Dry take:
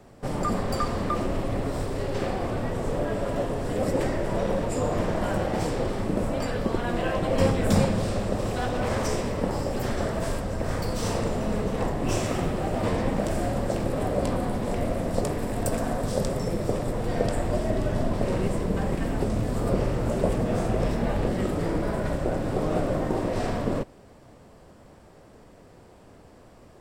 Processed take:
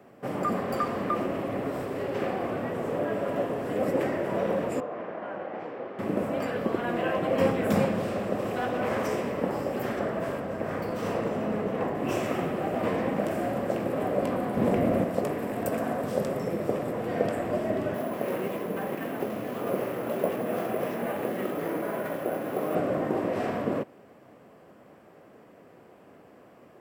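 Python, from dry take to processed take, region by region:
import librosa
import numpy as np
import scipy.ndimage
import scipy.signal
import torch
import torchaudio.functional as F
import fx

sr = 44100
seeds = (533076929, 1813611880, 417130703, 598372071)

y = fx.chain(x, sr, fx.highpass(hz=830.0, slope=6),
    fx.spacing_loss(db_at_10k=38), at=(4.8, 5.99))
y = fx.chain(y, sr, fx.high_shelf(hz=4000.0, db=-6.5),
    fx.echo_single(ms=282, db=-12.5), at=(9.99, 11.95))
y = fx.chain(y, sr, fx.low_shelf(hz=360.0, db=8.0),
    fx.env_flatten(amount_pct=50), at=(14.57, 15.04))
y = fx.chain(y, sr, fx.highpass(hz=290.0, slope=6),
    fx.resample_bad(factor=4, down='none', up='hold'), at=(17.94, 22.75))
y = scipy.signal.sosfilt(scipy.signal.butter(2, 190.0, 'highpass', fs=sr, output='sos'), y)
y = fx.band_shelf(y, sr, hz=5900.0, db=-10.0, octaves=1.7)
y = fx.notch(y, sr, hz=900.0, q=15.0)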